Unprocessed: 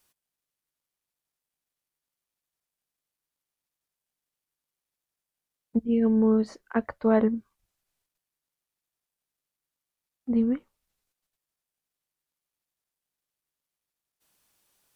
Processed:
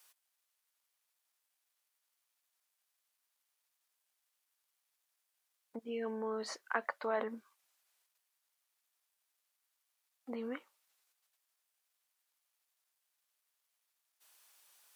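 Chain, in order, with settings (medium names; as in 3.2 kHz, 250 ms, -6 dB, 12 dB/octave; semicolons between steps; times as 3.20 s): peak limiter -22 dBFS, peak gain reduction 11.5 dB; high-pass 770 Hz 12 dB/octave; trim +5 dB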